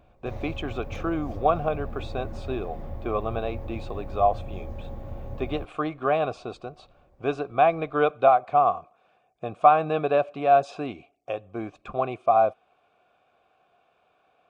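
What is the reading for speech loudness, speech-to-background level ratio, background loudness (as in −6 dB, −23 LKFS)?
−25.5 LKFS, 13.0 dB, −38.5 LKFS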